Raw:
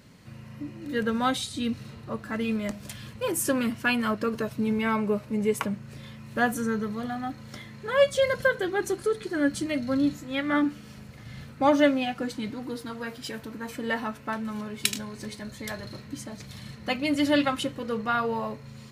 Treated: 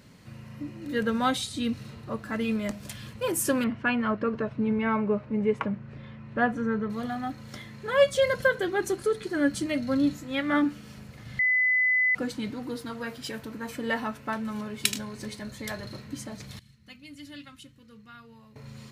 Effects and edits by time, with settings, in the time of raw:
0:03.64–0:06.90: low-pass filter 2,200 Hz
0:11.39–0:12.15: beep over 2,010 Hz −20 dBFS
0:16.59–0:18.56: guitar amp tone stack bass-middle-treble 6-0-2

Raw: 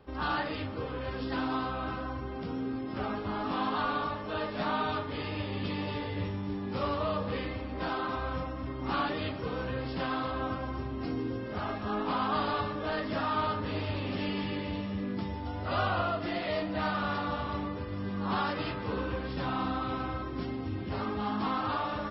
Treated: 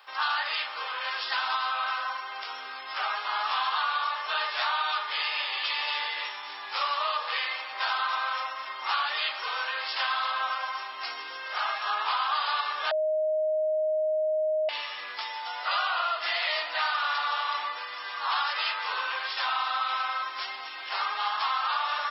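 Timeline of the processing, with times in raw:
0:12.91–0:14.69: beep over 622 Hz −18 dBFS
whole clip: high-pass filter 870 Hz 24 dB per octave; high-shelf EQ 2,100 Hz +8.5 dB; downward compressor, threshold −33 dBFS; level +8.5 dB

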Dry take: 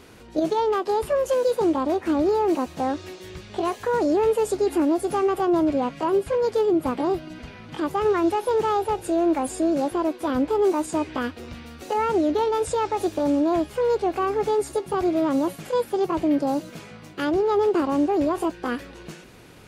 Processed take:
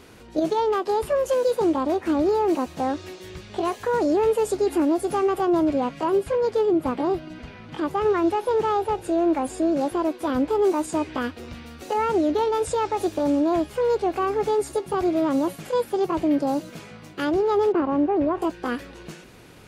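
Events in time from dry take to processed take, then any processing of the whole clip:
0:06.32–0:09.81: high-shelf EQ 6,000 Hz −7 dB
0:17.72–0:18.42: low-pass filter 2,100 Hz

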